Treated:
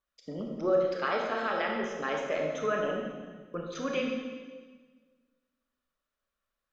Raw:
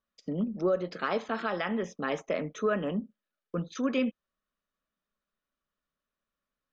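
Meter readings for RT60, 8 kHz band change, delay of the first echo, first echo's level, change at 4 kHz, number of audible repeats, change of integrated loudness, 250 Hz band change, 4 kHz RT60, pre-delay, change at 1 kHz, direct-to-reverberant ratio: 1.5 s, n/a, none, none, +1.5 dB, none, 0.0 dB, -4.5 dB, 1.4 s, 25 ms, +2.0 dB, 0.0 dB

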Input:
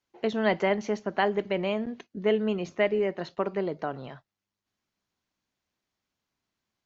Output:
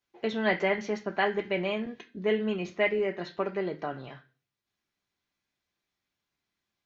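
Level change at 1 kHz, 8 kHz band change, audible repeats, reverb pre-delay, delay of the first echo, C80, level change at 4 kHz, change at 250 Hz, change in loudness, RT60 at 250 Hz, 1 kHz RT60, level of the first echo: -2.0 dB, n/a, none, 3 ms, none, 18.5 dB, 0.0 dB, -2.5 dB, -1.5 dB, 0.50 s, 0.35 s, none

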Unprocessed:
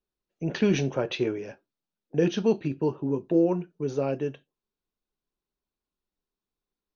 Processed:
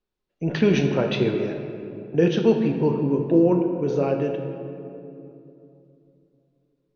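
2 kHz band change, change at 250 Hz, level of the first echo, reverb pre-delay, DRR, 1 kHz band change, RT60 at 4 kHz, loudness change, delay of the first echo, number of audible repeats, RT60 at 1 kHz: +5.0 dB, +5.5 dB, none, 17 ms, 4.0 dB, +5.5 dB, 1.5 s, +5.0 dB, none, none, 2.6 s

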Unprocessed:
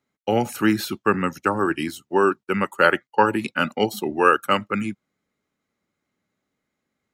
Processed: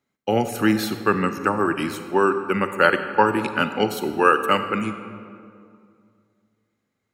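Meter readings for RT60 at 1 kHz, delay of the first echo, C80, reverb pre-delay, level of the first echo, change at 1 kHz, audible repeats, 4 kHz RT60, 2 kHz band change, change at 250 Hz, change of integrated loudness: 2.1 s, none, 10.0 dB, 38 ms, none, +0.5 dB, none, 1.3 s, +0.5 dB, +0.5 dB, +0.5 dB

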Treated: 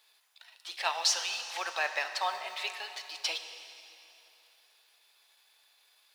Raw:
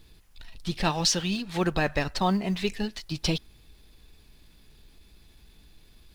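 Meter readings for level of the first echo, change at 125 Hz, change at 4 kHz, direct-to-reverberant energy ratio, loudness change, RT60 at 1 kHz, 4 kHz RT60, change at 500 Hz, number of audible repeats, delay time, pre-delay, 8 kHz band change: none, under -40 dB, -2.0 dB, 7.5 dB, -4.5 dB, 3.0 s, 2.8 s, -11.0 dB, none, none, 5 ms, -2.5 dB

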